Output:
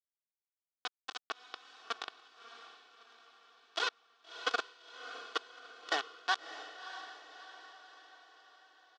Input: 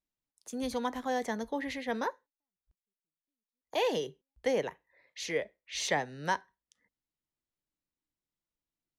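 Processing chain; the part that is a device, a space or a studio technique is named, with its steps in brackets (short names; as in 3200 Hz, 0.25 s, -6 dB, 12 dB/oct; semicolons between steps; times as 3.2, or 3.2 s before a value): reverse delay 0.402 s, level -7 dB; notches 50/100/150/200/250/300/350/400 Hz; hand-held game console (bit-crush 4-bit; speaker cabinet 470–5300 Hz, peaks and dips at 1300 Hz +9 dB, 2100 Hz -8 dB, 3400 Hz +4 dB); comb 2.7 ms, depth 74%; diffused feedback echo 0.636 s, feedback 52%, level -11 dB; gain -5 dB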